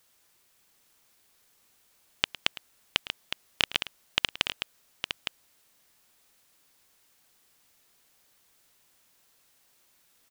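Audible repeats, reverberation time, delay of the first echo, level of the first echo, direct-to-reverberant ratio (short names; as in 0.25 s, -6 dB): 2, none, 0.108 s, -17.0 dB, none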